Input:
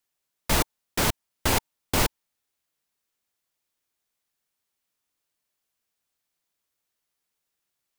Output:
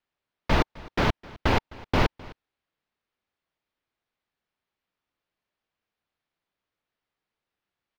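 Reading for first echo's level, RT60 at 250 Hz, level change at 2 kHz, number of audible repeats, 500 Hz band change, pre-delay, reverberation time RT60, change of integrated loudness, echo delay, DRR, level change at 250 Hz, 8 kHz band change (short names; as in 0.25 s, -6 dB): -21.5 dB, none, +0.5 dB, 1, +2.5 dB, none, none, -1.0 dB, 0.259 s, none, +2.5 dB, -18.5 dB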